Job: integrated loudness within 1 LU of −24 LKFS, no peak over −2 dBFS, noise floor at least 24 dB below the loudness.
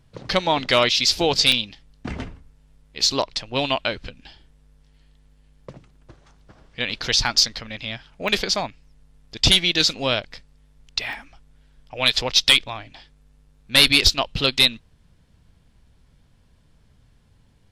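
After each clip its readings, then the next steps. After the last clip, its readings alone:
number of dropouts 4; longest dropout 1.1 ms; integrated loudness −19.0 LKFS; sample peak −4.0 dBFS; target loudness −24.0 LKFS
→ repair the gap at 0:01.52/0:06.93/0:08.28/0:11.13, 1.1 ms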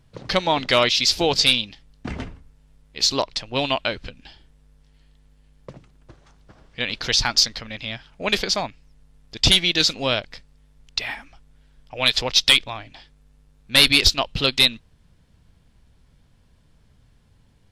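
number of dropouts 0; integrated loudness −19.0 LKFS; sample peak −4.0 dBFS; target loudness −24.0 LKFS
→ level −5 dB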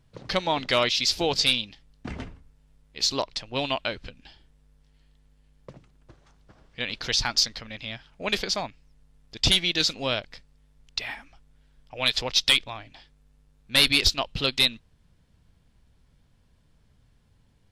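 integrated loudness −24.0 LKFS; sample peak −9.0 dBFS; background noise floor −63 dBFS

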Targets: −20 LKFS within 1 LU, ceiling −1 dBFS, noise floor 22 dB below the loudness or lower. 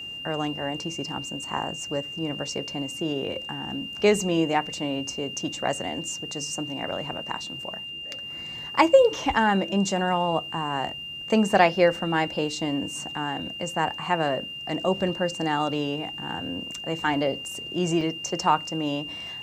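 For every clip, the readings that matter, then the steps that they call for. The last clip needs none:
number of dropouts 1; longest dropout 2.9 ms; interfering tone 2,800 Hz; level of the tone −34 dBFS; integrated loudness −26.5 LKFS; sample peak −3.5 dBFS; target loudness −20.0 LKFS
→ repair the gap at 0:18.01, 2.9 ms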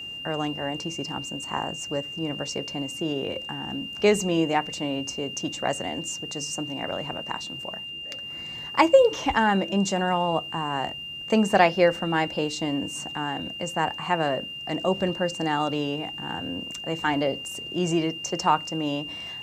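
number of dropouts 0; interfering tone 2,800 Hz; level of the tone −34 dBFS
→ notch filter 2,800 Hz, Q 30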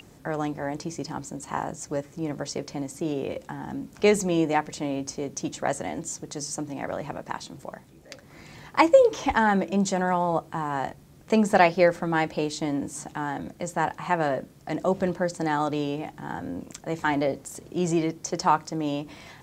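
interfering tone none found; integrated loudness −27.0 LKFS; sample peak −4.0 dBFS; target loudness −20.0 LKFS
→ level +7 dB
brickwall limiter −1 dBFS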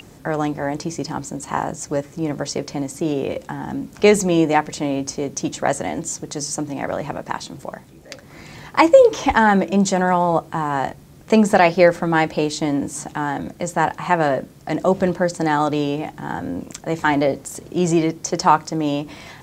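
integrated loudness −20.0 LKFS; sample peak −1.0 dBFS; background noise floor −45 dBFS

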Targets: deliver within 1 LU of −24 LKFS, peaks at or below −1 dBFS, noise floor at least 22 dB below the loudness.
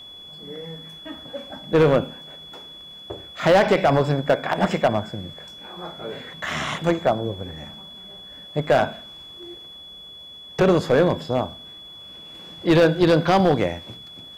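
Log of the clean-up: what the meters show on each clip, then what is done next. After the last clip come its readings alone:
share of clipped samples 0.8%; peaks flattened at −10.5 dBFS; interfering tone 3,400 Hz; level of the tone −39 dBFS; integrated loudness −20.5 LKFS; sample peak −10.5 dBFS; target loudness −24.0 LKFS
→ clipped peaks rebuilt −10.5 dBFS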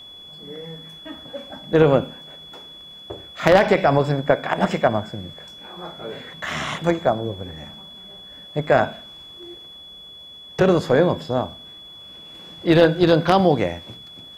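share of clipped samples 0.0%; interfering tone 3,400 Hz; level of the tone −39 dBFS
→ notch filter 3,400 Hz, Q 30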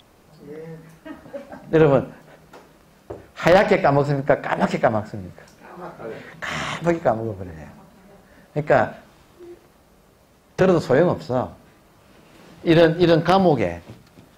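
interfering tone none found; integrated loudness −19.5 LKFS; sample peak −1.5 dBFS; target loudness −24.0 LKFS
→ level −4.5 dB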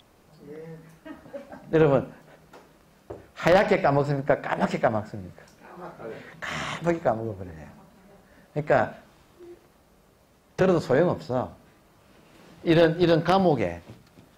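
integrated loudness −24.0 LKFS; sample peak −6.0 dBFS; background noise floor −59 dBFS

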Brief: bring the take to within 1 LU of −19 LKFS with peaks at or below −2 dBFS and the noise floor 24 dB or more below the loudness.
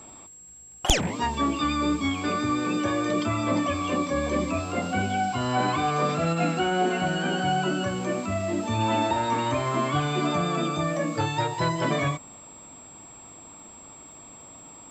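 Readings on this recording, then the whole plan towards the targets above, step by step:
crackle rate 23 per second; interfering tone 7,600 Hz; level of the tone −45 dBFS; integrated loudness −26.0 LKFS; sample peak −5.0 dBFS; target loudness −19.0 LKFS
→ click removal
notch filter 7,600 Hz, Q 30
level +7 dB
brickwall limiter −2 dBFS

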